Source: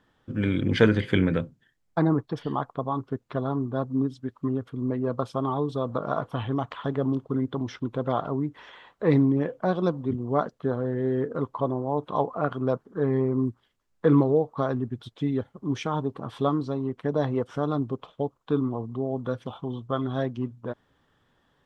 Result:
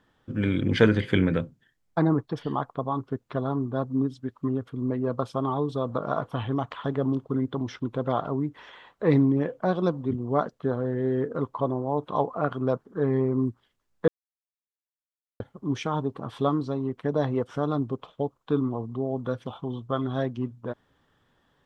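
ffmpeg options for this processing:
ffmpeg -i in.wav -filter_complex "[0:a]asplit=3[link_01][link_02][link_03];[link_01]atrim=end=14.08,asetpts=PTS-STARTPTS,afade=type=out:start_time=14.076:duration=0.004:curve=hsin[link_04];[link_02]atrim=start=14.08:end=15.4,asetpts=PTS-STARTPTS,volume=0[link_05];[link_03]atrim=start=15.4,asetpts=PTS-STARTPTS,afade=type=in:duration=0.004:curve=hsin[link_06];[link_04][link_05][link_06]concat=n=3:v=0:a=1" out.wav

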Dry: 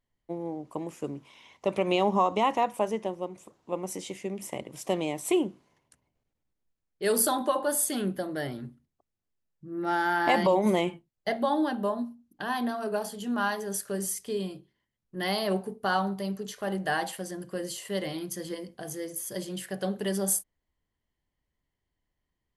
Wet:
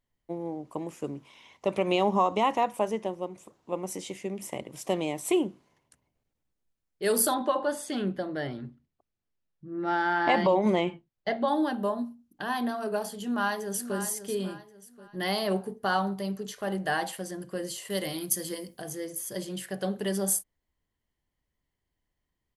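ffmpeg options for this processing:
ffmpeg -i in.wav -filter_complex "[0:a]asettb=1/sr,asplit=3[link_01][link_02][link_03];[link_01]atrim=end=7.344[link_04];[link_02]atrim=start=7.34:end=11.48,asetpts=PTS-STARTPTS,afade=type=in:duration=0.004:curve=qsin,afade=type=out:start_time=4.136:duration=0.004:curve=qsin,lowpass=4700[link_05];[link_03]atrim=start=11.476[link_06];[link_04][link_05]acrossfade=duration=0.004:curve1=hsin:curve2=qsin[link_07];[link_07][link_06]acrossfade=duration=0.004:curve1=qsin:curve2=hsin,asplit=2[link_08][link_09];[link_09]afade=type=in:start_time=13.2:duration=0.01,afade=type=out:start_time=13.99:duration=0.01,aecho=0:1:540|1080|1620|2160:0.298538|0.104488|0.0365709|0.0127998[link_10];[link_08][link_10]amix=inputs=2:normalize=0,asettb=1/sr,asplit=3[link_11][link_12][link_13];[link_11]atrim=end=17.904[link_14];[link_12]atrim=start=17.9:end=18.82,asetpts=PTS-STARTPTS,afade=type=in:duration=0.004:curve=qsin,afade=type=out:start_time=0.916:duration=0.004:curve=qsin,aemphasis=mode=production:type=50fm[link_15];[link_13]atrim=start=18.816[link_16];[link_14][link_15]acrossfade=duration=0.004:curve1=hsin:curve2=qsin[link_17];[link_17][link_16]acrossfade=duration=0.004:curve1=qsin:curve2=hsin" out.wav

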